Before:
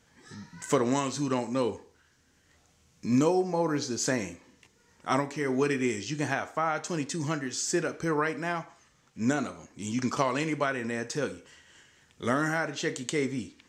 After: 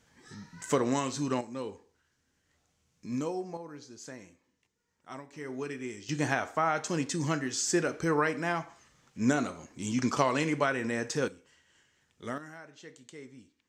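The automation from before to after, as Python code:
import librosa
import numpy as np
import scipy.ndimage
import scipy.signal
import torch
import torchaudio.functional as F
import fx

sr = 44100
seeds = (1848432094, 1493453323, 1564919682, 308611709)

y = fx.gain(x, sr, db=fx.steps((0.0, -2.0), (1.41, -9.5), (3.57, -17.0), (5.33, -10.5), (6.09, 0.5), (11.28, -9.5), (12.38, -18.5)))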